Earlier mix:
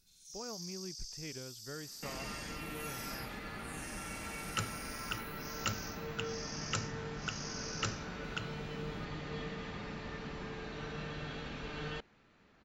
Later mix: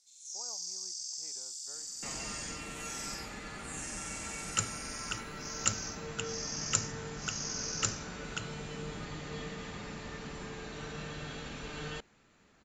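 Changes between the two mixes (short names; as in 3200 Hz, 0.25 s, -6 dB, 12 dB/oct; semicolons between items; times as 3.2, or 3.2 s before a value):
speech: add band-pass 860 Hz, Q 2.9; master: add synth low-pass 7400 Hz, resonance Q 5.9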